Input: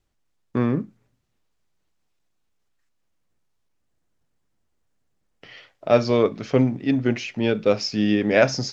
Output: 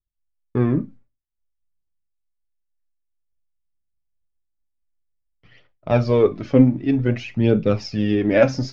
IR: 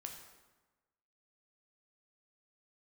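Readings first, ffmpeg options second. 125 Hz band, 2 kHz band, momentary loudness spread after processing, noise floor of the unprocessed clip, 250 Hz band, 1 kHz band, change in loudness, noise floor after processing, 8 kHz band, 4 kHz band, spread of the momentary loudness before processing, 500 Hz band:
+6.0 dB, −2.5 dB, 8 LU, −72 dBFS, +3.0 dB, −1.5 dB, +2.0 dB, −76 dBFS, can't be measured, −5.5 dB, 8 LU, +1.0 dB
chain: -filter_complex "[0:a]aphaser=in_gain=1:out_gain=1:delay=3.9:decay=0.49:speed=0.53:type=triangular,aemphasis=mode=reproduction:type=bsi,agate=range=-33dB:threshold=-35dB:ratio=3:detection=peak,asplit=2[link_01][link_02];[1:a]atrim=start_sample=2205,atrim=end_sample=4410,asetrate=74970,aresample=44100[link_03];[link_02][link_03]afir=irnorm=-1:irlink=0,volume=3.5dB[link_04];[link_01][link_04]amix=inputs=2:normalize=0,volume=-5.5dB"

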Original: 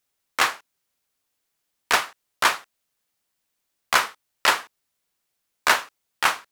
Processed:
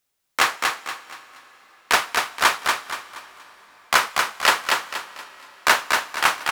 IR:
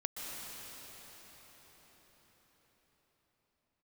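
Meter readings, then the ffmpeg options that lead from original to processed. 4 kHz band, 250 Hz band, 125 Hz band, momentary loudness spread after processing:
+3.5 dB, +3.5 dB, +3.5 dB, 17 LU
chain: -filter_complex "[0:a]aecho=1:1:237|474|711|948:0.631|0.221|0.0773|0.0271,asplit=2[link_01][link_02];[1:a]atrim=start_sample=2205[link_03];[link_02][link_03]afir=irnorm=-1:irlink=0,volume=-19.5dB[link_04];[link_01][link_04]amix=inputs=2:normalize=0,volume=1dB"

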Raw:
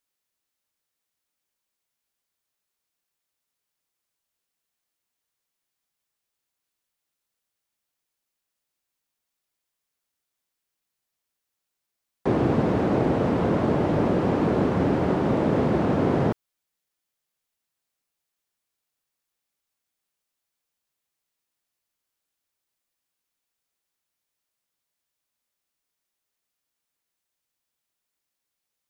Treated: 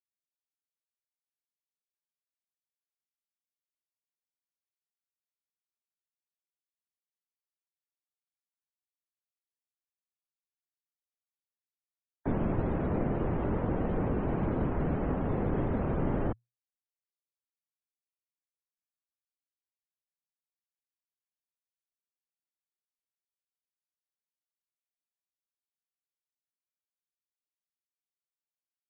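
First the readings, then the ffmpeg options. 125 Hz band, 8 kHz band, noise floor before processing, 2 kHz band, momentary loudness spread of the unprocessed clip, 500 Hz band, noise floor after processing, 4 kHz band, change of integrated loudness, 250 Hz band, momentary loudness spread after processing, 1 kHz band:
−6.0 dB, can't be measured, −84 dBFS, −10.0 dB, 2 LU, −10.0 dB, below −85 dBFS, below −15 dB, −8.5 dB, −9.0 dB, 2 LU, −9.5 dB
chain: -af "afftdn=noise_reduction=34:noise_floor=-43,afreqshift=-120,volume=-7.5dB"

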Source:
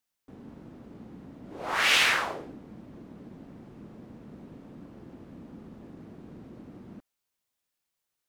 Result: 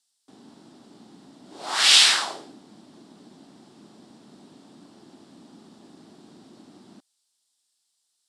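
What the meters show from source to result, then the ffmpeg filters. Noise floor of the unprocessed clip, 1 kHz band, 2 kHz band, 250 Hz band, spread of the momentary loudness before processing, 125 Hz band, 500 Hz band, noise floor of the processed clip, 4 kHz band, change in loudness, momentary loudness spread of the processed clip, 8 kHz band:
−84 dBFS, +0.5 dB, 0.0 dB, −3.0 dB, 20 LU, can't be measured, −3.0 dB, −75 dBFS, +10.5 dB, +7.5 dB, 17 LU, +12.5 dB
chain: -af "aexciter=amount=6.4:drive=5.7:freq=3400,highpass=240,equalizer=frequency=500:width_type=q:width=4:gain=-8,equalizer=frequency=800:width_type=q:width=4:gain=3,equalizer=frequency=6400:width_type=q:width=4:gain=-8,lowpass=frequency=8400:width=0.5412,lowpass=frequency=8400:width=1.3066"

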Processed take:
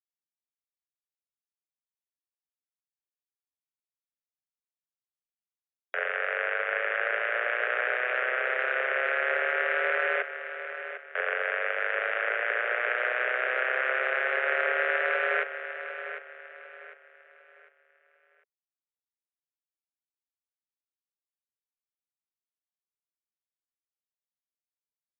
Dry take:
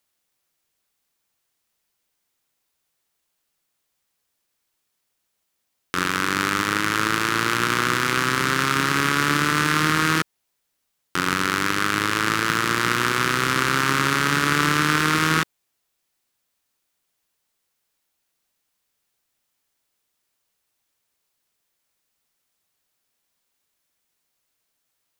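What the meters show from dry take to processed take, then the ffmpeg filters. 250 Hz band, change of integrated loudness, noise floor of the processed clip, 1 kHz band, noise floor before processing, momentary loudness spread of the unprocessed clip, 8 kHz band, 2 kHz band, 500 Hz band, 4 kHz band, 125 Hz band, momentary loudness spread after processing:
below −25 dB, −7.0 dB, below −85 dBFS, −10.5 dB, −76 dBFS, 4 LU, below −40 dB, −3.5 dB, 0.0 dB, −18.0 dB, below −40 dB, 11 LU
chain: -af "highpass=frequency=180:width_type=q:width=0.5412,highpass=frequency=180:width_type=q:width=1.307,lowpass=frequency=2300:width_type=q:width=0.5176,lowpass=frequency=2300:width_type=q:width=0.7071,lowpass=frequency=2300:width_type=q:width=1.932,afreqshift=250,afftfilt=real='re*gte(hypot(re,im),0.00447)':imag='im*gte(hypot(re,im),0.00447)':win_size=1024:overlap=0.75,aecho=1:1:751|1502|2253|3004:0.299|0.102|0.0345|0.0117,volume=-6dB"

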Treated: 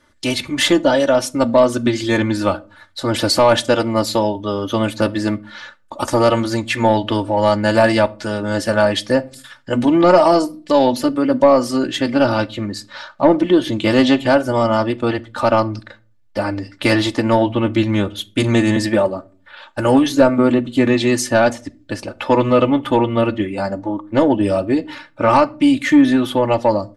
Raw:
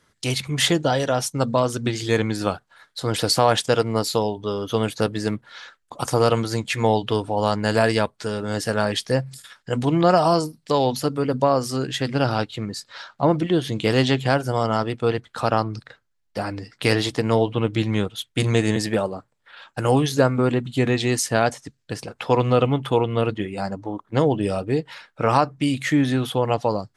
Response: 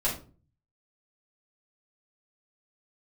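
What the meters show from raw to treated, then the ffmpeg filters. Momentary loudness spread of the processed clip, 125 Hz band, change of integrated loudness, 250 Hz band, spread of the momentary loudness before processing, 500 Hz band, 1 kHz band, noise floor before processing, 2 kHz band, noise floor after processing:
11 LU, 0.0 dB, +5.5 dB, +8.0 dB, 11 LU, +6.0 dB, +4.5 dB, −69 dBFS, +5.5 dB, −51 dBFS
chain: -filter_complex "[0:a]highshelf=frequency=3900:gain=-7.5,aecho=1:1:3.4:0.85,asoftclip=type=tanh:threshold=-6.5dB,asplit=2[link_01][link_02];[1:a]atrim=start_sample=2205[link_03];[link_02][link_03]afir=irnorm=-1:irlink=0,volume=-23dB[link_04];[link_01][link_04]amix=inputs=2:normalize=0,volume=4.5dB"

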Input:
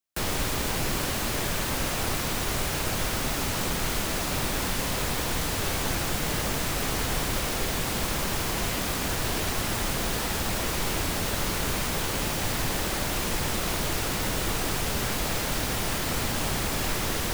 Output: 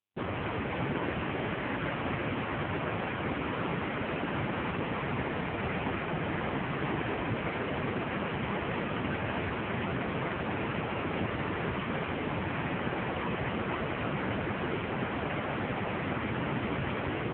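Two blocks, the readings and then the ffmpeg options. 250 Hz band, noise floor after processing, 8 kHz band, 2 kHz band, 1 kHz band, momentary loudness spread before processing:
−0.5 dB, −35 dBFS, below −40 dB, −3.5 dB, −2.5 dB, 0 LU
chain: -filter_complex "[0:a]acontrast=55,afwtdn=0.0447,asplit=2[link_01][link_02];[link_02]aecho=0:1:55.39|265.3:0.355|0.562[link_03];[link_01][link_03]amix=inputs=2:normalize=0,volume=-5.5dB" -ar 8000 -c:a libopencore_amrnb -b:a 5900

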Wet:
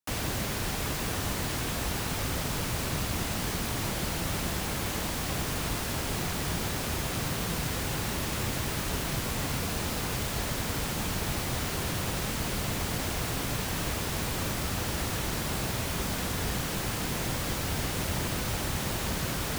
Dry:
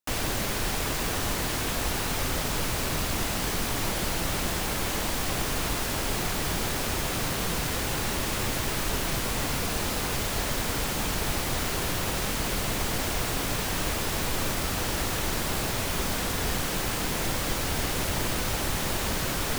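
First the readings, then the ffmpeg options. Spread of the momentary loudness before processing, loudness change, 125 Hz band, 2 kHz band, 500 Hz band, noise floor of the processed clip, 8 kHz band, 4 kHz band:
0 LU, −3.0 dB, 0.0 dB, −3.5 dB, −3.5 dB, −33 dBFS, −3.5 dB, −3.5 dB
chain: -filter_complex "[0:a]highpass=frequency=88:poles=1,acrossover=split=190|1200|4500[link_01][link_02][link_03][link_04];[link_01]acontrast=80[link_05];[link_05][link_02][link_03][link_04]amix=inputs=4:normalize=0,volume=-3.5dB"

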